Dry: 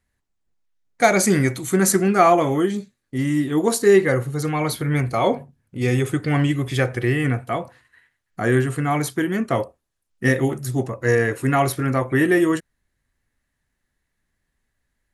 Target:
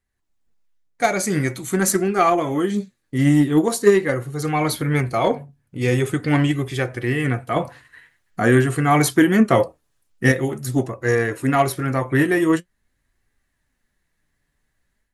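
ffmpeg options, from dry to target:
-filter_complex "[0:a]dynaudnorm=f=150:g=3:m=9dB,flanger=delay=2.5:depth=4.5:regen=65:speed=0.45:shape=sinusoidal,aeval=exprs='0.668*(cos(1*acos(clip(val(0)/0.668,-1,1)))-cos(1*PI/2))+0.0668*(cos(3*acos(clip(val(0)/0.668,-1,1)))-cos(3*PI/2))':c=same,asettb=1/sr,asplit=3[a][b][c];[a]atrim=end=7.564[d];[b]atrim=start=7.56:end=10.32,asetpts=PTS-STARTPTS,afade=t=in:d=0.004:c=qsin,afade=t=out:st=2.756:d=0.004:c=qsin,acontrast=36[e];[c]atrim=start=10.316[f];[d][e]acrossfade=d=0.004:c1=hsin:c2=qsin[g];[g][f]acrossfade=d=0.004:c1=qsin:c2=hsin,volume=1.5dB"

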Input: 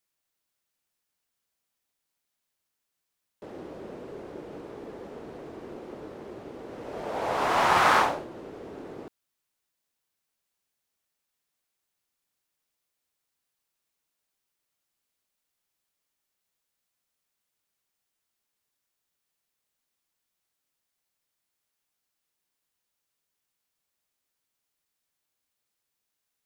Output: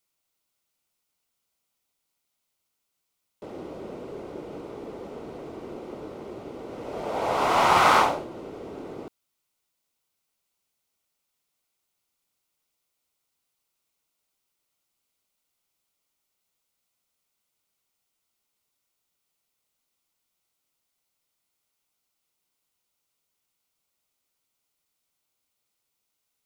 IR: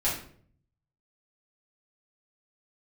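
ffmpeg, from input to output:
-af "bandreject=f=1.7k:w=5.3,volume=3dB"

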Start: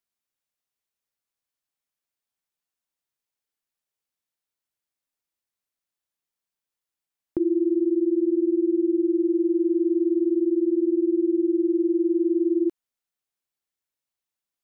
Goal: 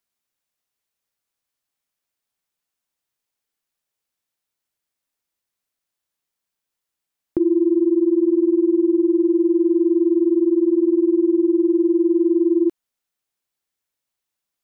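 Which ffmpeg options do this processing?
-af "acontrast=27"

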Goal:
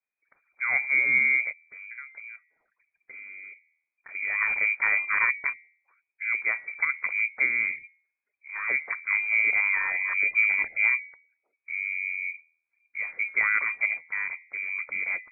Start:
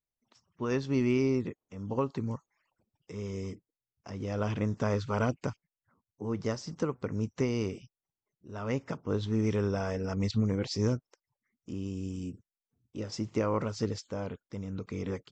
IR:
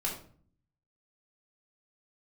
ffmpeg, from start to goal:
-filter_complex "[0:a]bandreject=f=80.95:t=h:w=4,bandreject=f=161.9:t=h:w=4,bandreject=f=242.85:t=h:w=4,bandreject=f=323.8:t=h:w=4,bandreject=f=404.75:t=h:w=4,bandreject=f=485.7:t=h:w=4,bandreject=f=566.65:t=h:w=4,asettb=1/sr,asplit=3[a][b][c];[a]atrim=end=1.514[d];[b]atrim=start=1.51:end=4.15,asetpts=PTS-STARTPTS,afade=t=in:d=0.004:c=qsin,afade=t=out:st=2.636:d=0.004:c=qsin,acompressor=threshold=-50dB:ratio=3[e];[c]atrim=start=4.146[f];[d][e]acrossfade=d=0.004:c1=hsin:c2=qsin[g];[g][f]acrossfade=d=0.004:c1=qsin:c2=hsin,lowpass=f=2.1k:t=q:w=0.5098,lowpass=f=2.1k:t=q:w=0.6013,lowpass=f=2.1k:t=q:w=0.9,lowpass=f=2.1k:t=q:w=2.563,afreqshift=-2500,volume=5dB"

